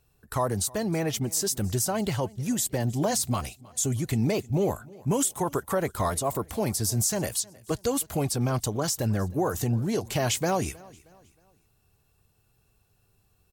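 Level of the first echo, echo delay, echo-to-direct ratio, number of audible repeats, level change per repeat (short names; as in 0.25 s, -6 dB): -23.0 dB, 0.314 s, -22.5 dB, 2, -8.0 dB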